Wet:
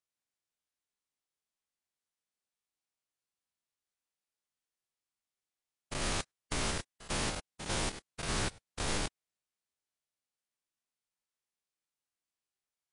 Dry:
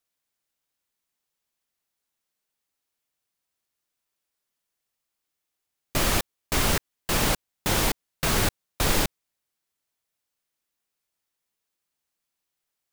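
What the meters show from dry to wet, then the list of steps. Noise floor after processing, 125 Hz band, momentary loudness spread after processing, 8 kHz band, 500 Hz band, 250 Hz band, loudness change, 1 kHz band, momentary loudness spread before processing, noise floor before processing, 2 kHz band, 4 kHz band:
under -85 dBFS, -10.5 dB, 6 LU, -10.0 dB, -10.5 dB, -10.5 dB, -11.0 dB, -10.5 dB, 5 LU, -83 dBFS, -10.0 dB, -9.5 dB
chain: stepped spectrum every 0.1 s; gain -8 dB; MP3 40 kbps 24000 Hz

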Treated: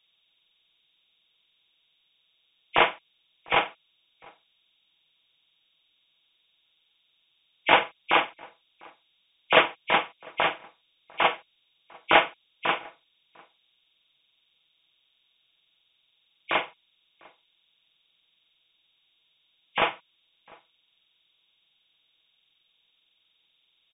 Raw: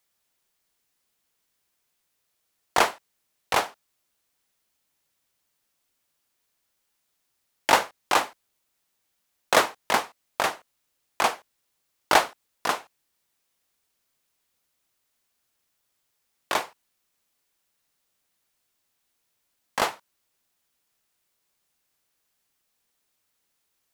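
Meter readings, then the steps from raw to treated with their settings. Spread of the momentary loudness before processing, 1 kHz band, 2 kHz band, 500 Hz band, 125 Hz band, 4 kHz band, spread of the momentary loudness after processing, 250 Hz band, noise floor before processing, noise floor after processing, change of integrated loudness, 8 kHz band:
13 LU, -0.5 dB, +2.5 dB, +0.5 dB, +1.0 dB, +1.5 dB, 14 LU, +0.5 dB, -76 dBFS, -71 dBFS, +0.5 dB, under -40 dB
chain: nonlinear frequency compression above 2100 Hz 4:1; comb 6.1 ms, depth 48%; outdoor echo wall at 120 m, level -26 dB; gain -1 dB

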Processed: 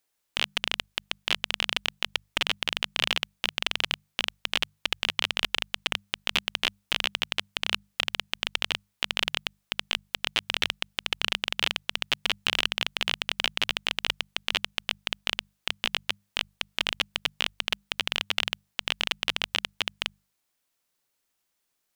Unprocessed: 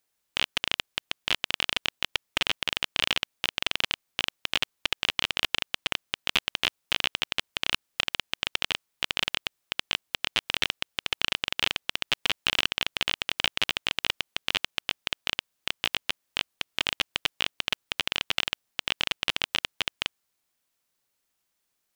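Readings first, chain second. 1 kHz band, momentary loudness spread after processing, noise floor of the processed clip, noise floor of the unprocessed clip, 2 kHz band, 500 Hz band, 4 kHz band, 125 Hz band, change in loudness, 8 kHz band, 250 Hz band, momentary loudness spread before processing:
0.0 dB, 5 LU, -78 dBFS, -79 dBFS, 0.0 dB, 0.0 dB, 0.0 dB, -1.0 dB, 0.0 dB, 0.0 dB, -0.5 dB, 5 LU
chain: notches 50/100/150/200 Hz

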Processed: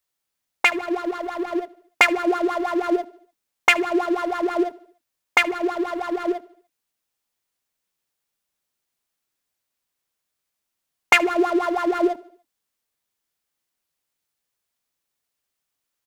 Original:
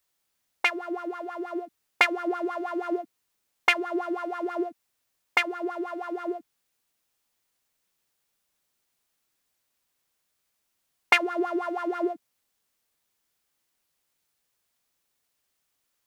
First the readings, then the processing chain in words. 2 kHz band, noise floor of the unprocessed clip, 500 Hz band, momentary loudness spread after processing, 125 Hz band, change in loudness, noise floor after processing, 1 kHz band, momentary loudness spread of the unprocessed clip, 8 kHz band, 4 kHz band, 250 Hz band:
+6.0 dB, -78 dBFS, +7.5 dB, 10 LU, n/a, +6.5 dB, -81 dBFS, +6.5 dB, 12 LU, +10.0 dB, +5.0 dB, +7.5 dB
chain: sample leveller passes 2; feedback echo 73 ms, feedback 54%, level -22 dB

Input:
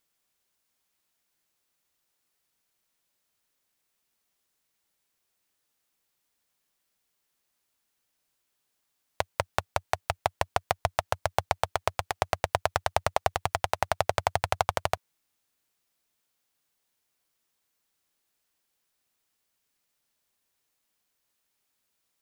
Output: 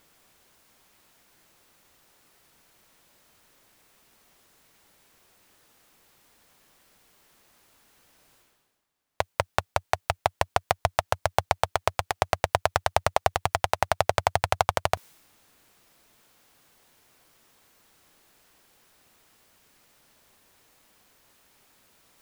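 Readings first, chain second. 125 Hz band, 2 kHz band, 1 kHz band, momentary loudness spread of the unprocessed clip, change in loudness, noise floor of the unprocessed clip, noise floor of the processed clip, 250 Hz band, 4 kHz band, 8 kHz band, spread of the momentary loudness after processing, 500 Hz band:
+3.0 dB, +3.0 dB, +3.0 dB, 5 LU, +3.0 dB, -78 dBFS, -75 dBFS, +3.0 dB, +3.0 dB, +3.0 dB, 5 LU, +3.0 dB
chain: reverse; upward compressor, threshold -41 dBFS; reverse; mismatched tape noise reduction decoder only; gain +3 dB

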